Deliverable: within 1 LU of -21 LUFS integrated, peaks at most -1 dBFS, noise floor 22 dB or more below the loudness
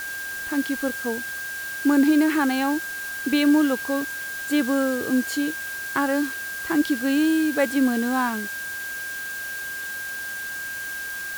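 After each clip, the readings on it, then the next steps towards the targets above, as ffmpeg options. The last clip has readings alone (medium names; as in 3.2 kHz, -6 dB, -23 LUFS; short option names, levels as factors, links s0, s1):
steady tone 1.6 kHz; tone level -30 dBFS; noise floor -32 dBFS; noise floor target -46 dBFS; loudness -24.0 LUFS; peak level -9.0 dBFS; loudness target -21.0 LUFS
-> -af "bandreject=f=1600:w=30"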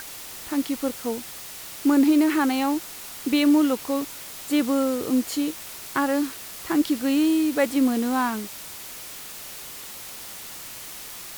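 steady tone not found; noise floor -39 dBFS; noise floor target -46 dBFS
-> -af "afftdn=nr=7:nf=-39"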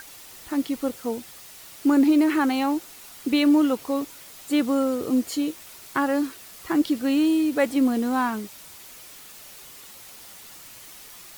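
noise floor -45 dBFS; noise floor target -46 dBFS
-> -af "afftdn=nr=6:nf=-45"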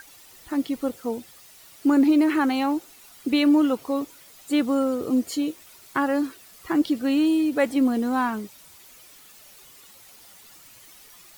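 noise floor -50 dBFS; loudness -23.5 LUFS; peak level -9.5 dBFS; loudness target -21.0 LUFS
-> -af "volume=1.33"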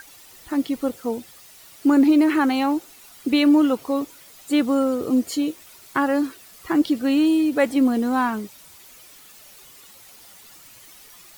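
loudness -21.0 LUFS; peak level -7.5 dBFS; noise floor -47 dBFS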